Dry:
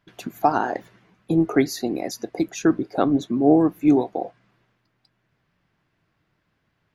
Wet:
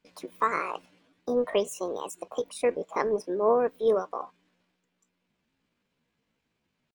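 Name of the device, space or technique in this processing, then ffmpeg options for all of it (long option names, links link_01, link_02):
chipmunk voice: -af "asetrate=66075,aresample=44100,atempo=0.66742,volume=-7dB"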